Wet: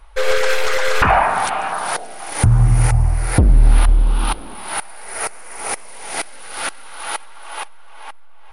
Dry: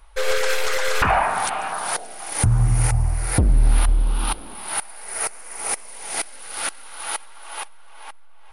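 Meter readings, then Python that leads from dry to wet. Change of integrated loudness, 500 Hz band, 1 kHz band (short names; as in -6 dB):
+4.0 dB, +5.0 dB, +4.5 dB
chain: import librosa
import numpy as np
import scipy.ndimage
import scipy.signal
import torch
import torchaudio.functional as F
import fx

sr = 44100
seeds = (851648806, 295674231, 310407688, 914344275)

y = fx.high_shelf(x, sr, hz=5000.0, db=-7.5)
y = y * 10.0 ** (5.0 / 20.0)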